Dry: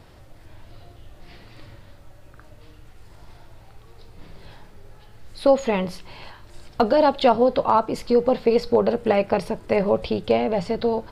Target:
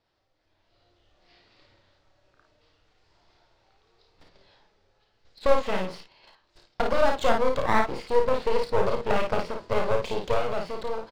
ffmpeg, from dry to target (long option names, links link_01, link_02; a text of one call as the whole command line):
ffmpeg -i in.wav -filter_complex "[0:a]agate=range=-18dB:threshold=-35dB:ratio=16:detection=peak,acrossover=split=3500[link_01][link_02];[link_02]acompressor=threshold=-53dB:ratio=4:attack=1:release=60[link_03];[link_01][link_03]amix=inputs=2:normalize=0,lowpass=frequency=5100:width=0.5412,lowpass=frequency=5100:width=1.3066,bass=frequency=250:gain=-11,treble=frequency=4000:gain=10,dynaudnorm=framelen=180:gausssize=9:maxgain=10dB,aeval=exprs='clip(val(0),-1,0.0075)':channel_layout=same,asplit=2[link_04][link_05];[link_05]aecho=0:1:31|54:0.473|0.596[link_06];[link_04][link_06]amix=inputs=2:normalize=0,volume=-6dB" out.wav